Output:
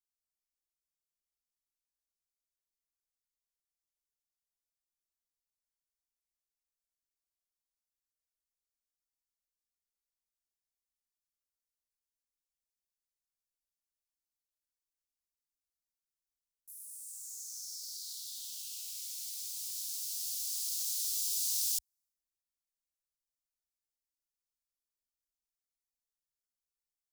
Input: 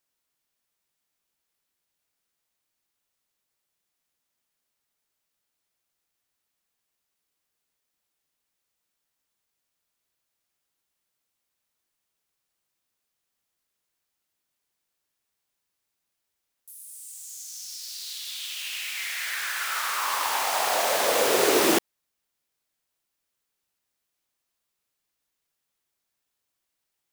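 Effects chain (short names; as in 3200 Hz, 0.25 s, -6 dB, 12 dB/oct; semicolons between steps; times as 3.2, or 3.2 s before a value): inverse Chebyshev band-stop 180–1600 Hz, stop band 60 dB; mismatched tape noise reduction decoder only; gain -4.5 dB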